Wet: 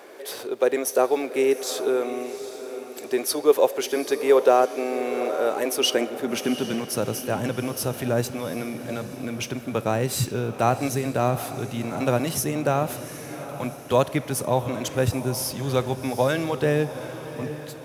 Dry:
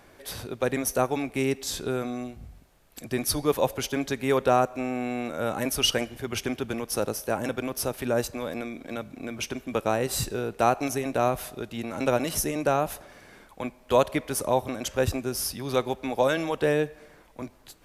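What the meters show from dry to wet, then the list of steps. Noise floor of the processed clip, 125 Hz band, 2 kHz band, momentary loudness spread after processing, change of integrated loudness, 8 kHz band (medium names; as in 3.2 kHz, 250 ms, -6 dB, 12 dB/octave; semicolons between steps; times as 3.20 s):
-38 dBFS, +6.0 dB, +1.0 dB, 12 LU, +3.0 dB, +1.5 dB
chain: companding laws mixed up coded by mu; high-pass sweep 410 Hz -> 120 Hz, 5.67–7.08 s; echo that smears into a reverb 771 ms, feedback 46%, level -12 dB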